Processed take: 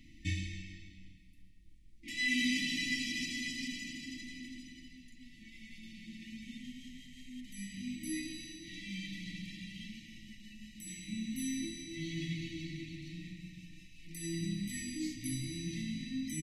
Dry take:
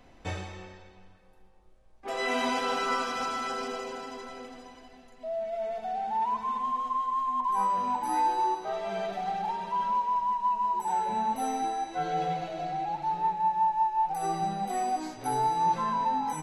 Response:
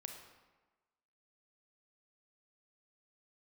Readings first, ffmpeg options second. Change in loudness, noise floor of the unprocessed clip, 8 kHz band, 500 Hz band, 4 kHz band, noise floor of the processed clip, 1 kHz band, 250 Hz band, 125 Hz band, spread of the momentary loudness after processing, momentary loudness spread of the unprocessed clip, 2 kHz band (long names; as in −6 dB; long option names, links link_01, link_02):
−9.5 dB, −55 dBFS, +1.0 dB, below −20 dB, +1.0 dB, −56 dBFS, below −40 dB, +1.0 dB, +1.0 dB, 19 LU, 11 LU, −0.5 dB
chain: -filter_complex "[0:a]asplit=7[link_01][link_02][link_03][link_04][link_05][link_06][link_07];[link_02]adelay=133,afreqshift=-41,volume=-17dB[link_08];[link_03]adelay=266,afreqshift=-82,volume=-21.2dB[link_09];[link_04]adelay=399,afreqshift=-123,volume=-25.3dB[link_10];[link_05]adelay=532,afreqshift=-164,volume=-29.5dB[link_11];[link_06]adelay=665,afreqshift=-205,volume=-33.6dB[link_12];[link_07]adelay=798,afreqshift=-246,volume=-37.8dB[link_13];[link_01][link_08][link_09][link_10][link_11][link_12][link_13]amix=inputs=7:normalize=0,afftfilt=real='re*(1-between(b*sr/4096,340,1800))':imag='im*(1-between(b*sr/4096,340,1800))':win_size=4096:overlap=0.75,volume=1dB"